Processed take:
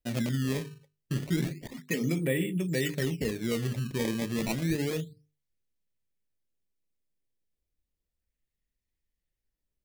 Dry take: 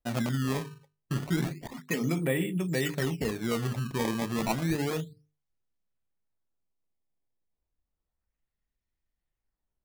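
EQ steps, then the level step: high-order bell 1 kHz -9 dB 1.3 oct; 0.0 dB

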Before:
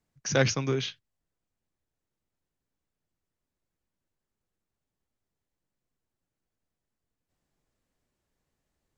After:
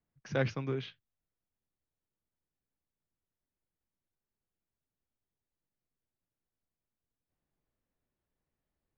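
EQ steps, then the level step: distance through air 290 m; -6.0 dB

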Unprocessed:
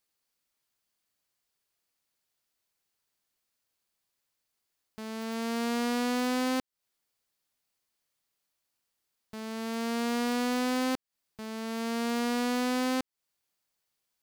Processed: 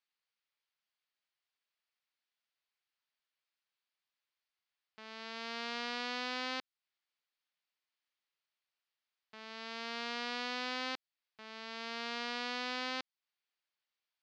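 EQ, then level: dynamic bell 4.6 kHz, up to +6 dB, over -52 dBFS, Q 1.2; band-pass filter 4 kHz, Q 0.52; distance through air 230 m; +1.0 dB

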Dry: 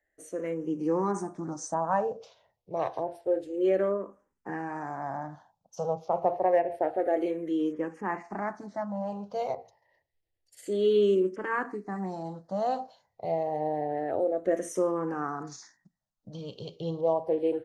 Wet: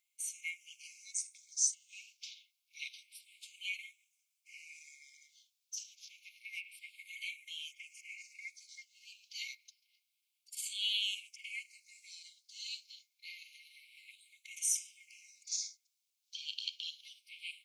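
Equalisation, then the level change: brick-wall FIR high-pass 2.1 kHz; +10.5 dB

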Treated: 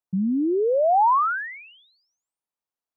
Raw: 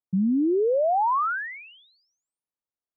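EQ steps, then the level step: peaking EQ 900 Hz +6 dB 1.3 oct; -1.0 dB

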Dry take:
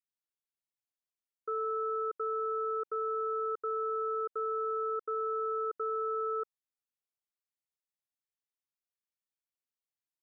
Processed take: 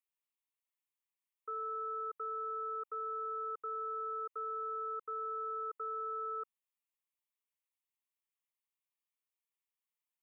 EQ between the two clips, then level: Chebyshev high-pass 960 Hz, order 2; static phaser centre 1 kHz, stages 8; +2.5 dB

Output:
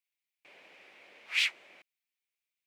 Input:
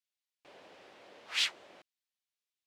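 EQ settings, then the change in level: high-pass 110 Hz 12 dB/octave; peaking EQ 2.3 kHz +14.5 dB 0.7 oct; treble shelf 9.7 kHz +10.5 dB; -6.0 dB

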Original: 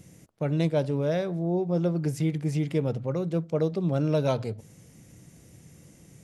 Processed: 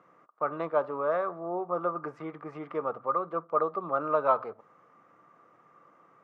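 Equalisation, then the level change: high-pass 560 Hz 12 dB/octave; resonant low-pass 1.2 kHz, resonance Q 15; 0.0 dB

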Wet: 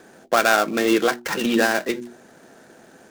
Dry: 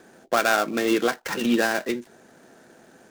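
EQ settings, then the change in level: hum notches 60/120/180/240/300/360 Hz; +3.5 dB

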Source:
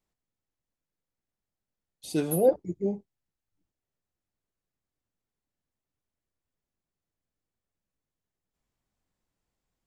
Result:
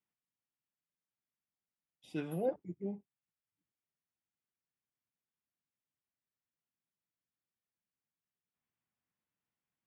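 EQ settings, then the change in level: Savitzky-Golay filter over 25 samples; high-pass 160 Hz 12 dB/octave; peaking EQ 470 Hz -9.5 dB 2.1 oct; -3.5 dB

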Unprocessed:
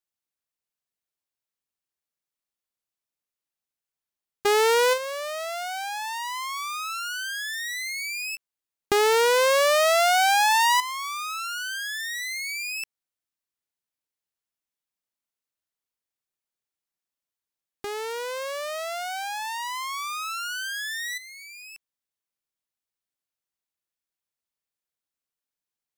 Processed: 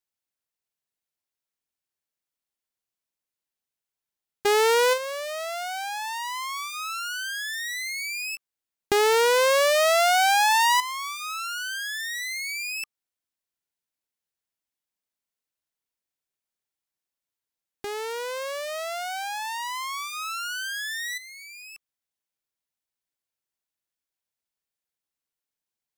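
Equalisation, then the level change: band-stop 1.2 kHz, Q 19; 0.0 dB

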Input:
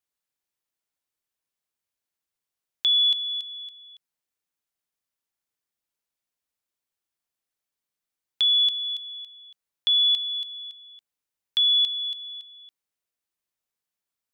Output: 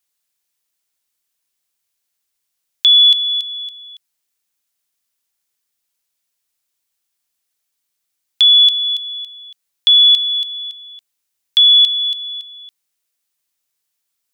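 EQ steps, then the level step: treble shelf 2.1 kHz +10.5 dB; +3.5 dB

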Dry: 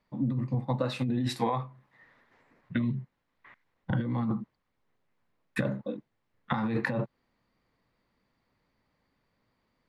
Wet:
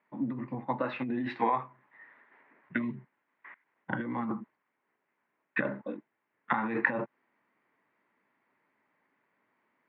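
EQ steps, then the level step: cabinet simulation 400–2300 Hz, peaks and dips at 510 Hz -9 dB, 730 Hz -5 dB, 1.2 kHz -4 dB; +6.5 dB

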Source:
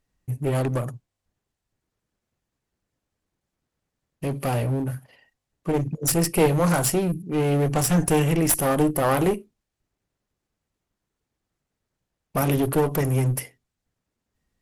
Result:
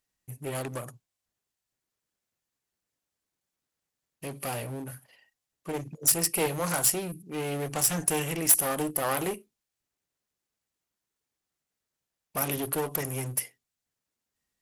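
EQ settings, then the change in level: tilt EQ +2.5 dB/octave; -6.5 dB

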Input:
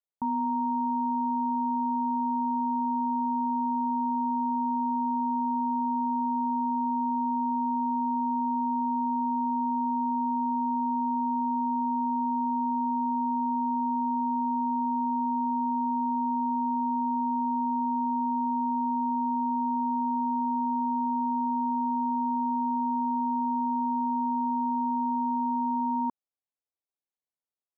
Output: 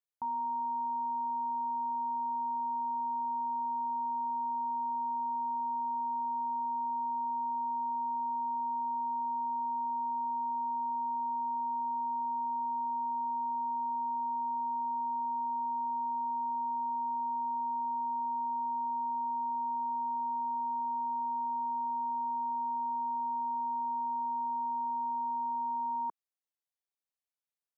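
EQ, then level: bass shelf 170 Hz -11.5 dB; peaking EQ 250 Hz -14 dB; -3.0 dB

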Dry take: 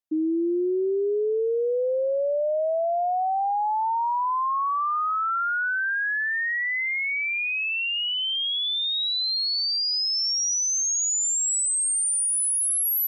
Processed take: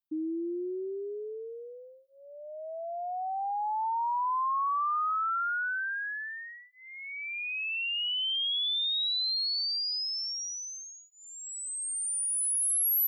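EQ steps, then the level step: treble shelf 11 kHz +8.5 dB; static phaser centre 2 kHz, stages 6; -4.0 dB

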